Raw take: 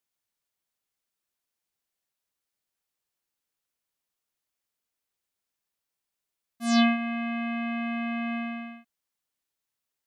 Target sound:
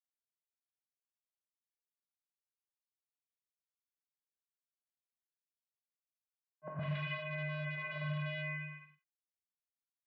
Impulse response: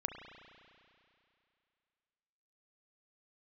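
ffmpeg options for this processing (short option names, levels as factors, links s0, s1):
-filter_complex "[0:a]agate=range=0.0224:threshold=0.0282:ratio=3:detection=peak,asettb=1/sr,asplit=3[s0][s1][s2];[s0]atrim=end=7.794[s3];[s1]atrim=start=7.79:end=8.69,asetpts=PTS-STARTPTS,afade=t=in:d=0.004:c=qsin,afade=t=out:st=0.896:d=0.004:c=qsin,bandreject=f=680:w=21[s4];[s2]atrim=start=8.686[s5];[s3][s4]acrossfade=d=0.004:c1=hsin:c2=qsin[s6];[s6][s5]acrossfade=d=0.004:c1=qsin:c2=hsin,flanger=delay=18:depth=4.9:speed=0.54,acrusher=bits=10:mix=0:aa=0.000001,aeval=exprs='(mod(25.1*val(0)+1,2)-1)/25.1':c=same,acrossover=split=350|1400[s7][s8][s9];[s7]adelay=110[s10];[s9]adelay=160[s11];[s10][s8][s11]amix=inputs=3:normalize=0[s12];[1:a]atrim=start_sample=2205,atrim=end_sample=6174,asetrate=66150,aresample=44100[s13];[s12][s13]afir=irnorm=-1:irlink=0,highpass=f=190:t=q:w=0.5412,highpass=f=190:t=q:w=1.307,lowpass=f=2800:t=q:w=0.5176,lowpass=f=2800:t=q:w=0.7071,lowpass=f=2800:t=q:w=1.932,afreqshift=-83,volume=1.33"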